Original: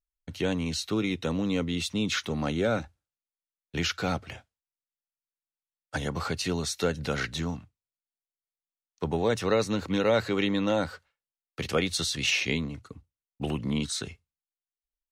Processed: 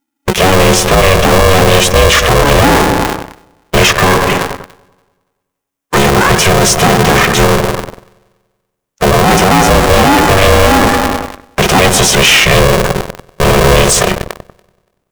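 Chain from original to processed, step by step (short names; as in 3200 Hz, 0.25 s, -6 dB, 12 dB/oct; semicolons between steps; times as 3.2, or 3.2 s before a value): bin magnitudes rounded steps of 15 dB; Butterworth band-stop 4200 Hz, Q 2.6; analogue delay 95 ms, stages 1024, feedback 63%, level -12 dB; sample leveller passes 3; bell 840 Hz +5.5 dB 0.72 oct; in parallel at -1.5 dB: compressor, threshold -29 dBFS, peak gain reduction 14 dB; on the sum: maximiser +18 dB; polarity switched at an audio rate 280 Hz; gain -1 dB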